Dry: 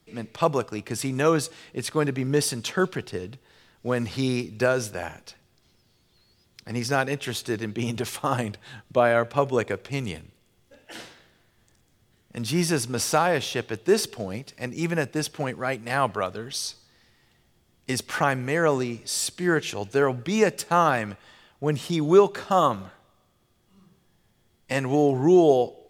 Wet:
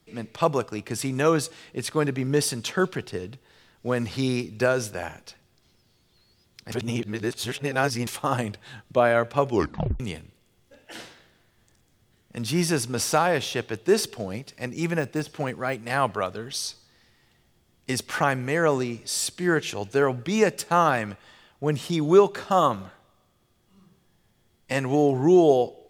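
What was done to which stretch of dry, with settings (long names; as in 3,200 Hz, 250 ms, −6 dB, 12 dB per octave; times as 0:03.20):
0:06.72–0:08.07: reverse
0:09.49: tape stop 0.51 s
0:14.99–0:15.76: de-essing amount 90%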